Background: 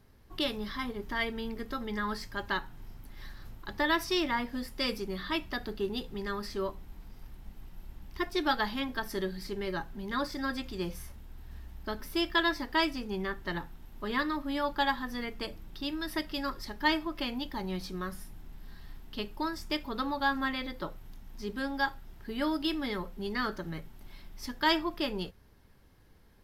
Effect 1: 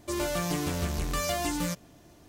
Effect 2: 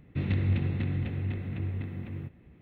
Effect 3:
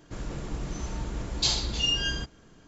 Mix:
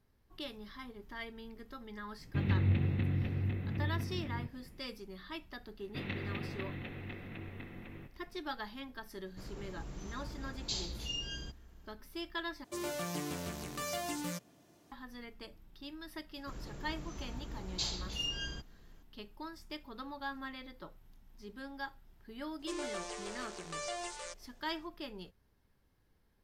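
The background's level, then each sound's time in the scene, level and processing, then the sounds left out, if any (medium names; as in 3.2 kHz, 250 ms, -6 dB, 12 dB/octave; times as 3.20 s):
background -12 dB
2.19 s: add 2 -2.5 dB
5.79 s: add 2 + high-pass 620 Hz 6 dB/octave
9.26 s: add 3 -11.5 dB + dynamic bell 1.3 kHz, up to -5 dB, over -41 dBFS, Q 0.74
12.64 s: replace with 1 -8 dB + high-pass 130 Hz
16.36 s: add 3 -11 dB
22.59 s: add 1 -9.5 dB + FFT band-pass 340–9700 Hz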